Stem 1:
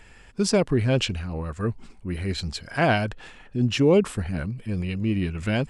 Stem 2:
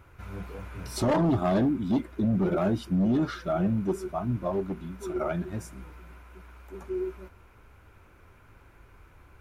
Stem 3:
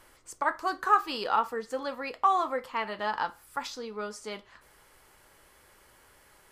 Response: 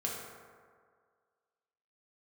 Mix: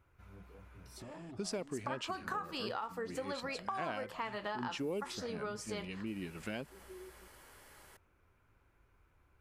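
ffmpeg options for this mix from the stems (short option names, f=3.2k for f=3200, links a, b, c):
-filter_complex "[0:a]highpass=220,adelay=1000,volume=-9dB[a];[1:a]acompressor=threshold=-33dB:ratio=6,volume=-15.5dB[b];[2:a]acompressor=threshold=-28dB:ratio=6,adelay=1450,volume=0.5dB[c];[a][b][c]amix=inputs=3:normalize=0,acompressor=threshold=-38dB:ratio=3"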